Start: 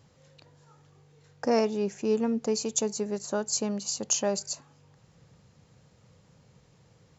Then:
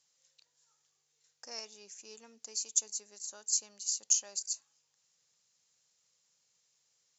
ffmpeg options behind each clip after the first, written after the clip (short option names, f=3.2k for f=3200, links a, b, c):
-af "bandpass=f=6.7k:t=q:w=1.6:csg=0"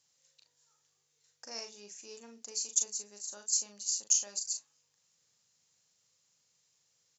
-filter_complex "[0:a]lowshelf=f=260:g=6.5,asplit=2[a][b];[b]adelay=39,volume=-6dB[c];[a][c]amix=inputs=2:normalize=0"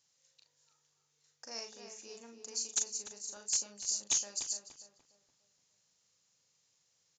-filter_complex "[0:a]aresample=16000,aeval=exprs='0.0841*(abs(mod(val(0)/0.0841+3,4)-2)-1)':c=same,aresample=44100,asplit=2[a][b];[b]adelay=293,lowpass=f=1.8k:p=1,volume=-6dB,asplit=2[c][d];[d]adelay=293,lowpass=f=1.8k:p=1,volume=0.4,asplit=2[e][f];[f]adelay=293,lowpass=f=1.8k:p=1,volume=0.4,asplit=2[g][h];[h]adelay=293,lowpass=f=1.8k:p=1,volume=0.4,asplit=2[i][j];[j]adelay=293,lowpass=f=1.8k:p=1,volume=0.4[k];[a][c][e][g][i][k]amix=inputs=6:normalize=0,volume=-1dB"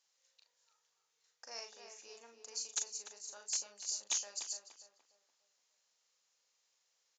-af "highpass=550,highshelf=f=7.4k:g=-11.5"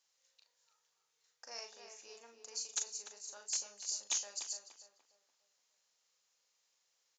-af "bandreject=f=224.3:t=h:w=4,bandreject=f=448.6:t=h:w=4,bandreject=f=672.9:t=h:w=4,bandreject=f=897.2:t=h:w=4,bandreject=f=1.1215k:t=h:w=4,bandreject=f=1.3458k:t=h:w=4,bandreject=f=1.5701k:t=h:w=4,bandreject=f=1.7944k:t=h:w=4,bandreject=f=2.0187k:t=h:w=4,bandreject=f=2.243k:t=h:w=4,bandreject=f=2.4673k:t=h:w=4,bandreject=f=2.6916k:t=h:w=4,bandreject=f=2.9159k:t=h:w=4,bandreject=f=3.1402k:t=h:w=4,bandreject=f=3.3645k:t=h:w=4,bandreject=f=3.5888k:t=h:w=4,bandreject=f=3.8131k:t=h:w=4,bandreject=f=4.0374k:t=h:w=4,bandreject=f=4.2617k:t=h:w=4,bandreject=f=4.486k:t=h:w=4,bandreject=f=4.7103k:t=h:w=4,bandreject=f=4.9346k:t=h:w=4,bandreject=f=5.1589k:t=h:w=4,bandreject=f=5.3832k:t=h:w=4,bandreject=f=5.6075k:t=h:w=4,bandreject=f=5.8318k:t=h:w=4,bandreject=f=6.0561k:t=h:w=4,bandreject=f=6.2804k:t=h:w=4,bandreject=f=6.5047k:t=h:w=4,bandreject=f=6.729k:t=h:w=4,bandreject=f=6.9533k:t=h:w=4,bandreject=f=7.1776k:t=h:w=4,bandreject=f=7.4019k:t=h:w=4,bandreject=f=7.6262k:t=h:w=4,bandreject=f=7.8505k:t=h:w=4,bandreject=f=8.0748k:t=h:w=4"